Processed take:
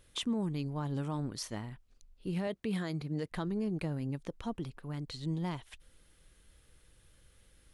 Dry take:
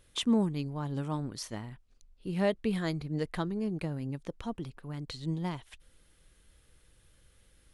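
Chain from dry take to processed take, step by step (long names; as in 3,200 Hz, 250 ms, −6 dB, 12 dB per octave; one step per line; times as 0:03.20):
brickwall limiter −26 dBFS, peak gain reduction 9.5 dB
0:02.47–0:03.32: high-pass filter 98 Hz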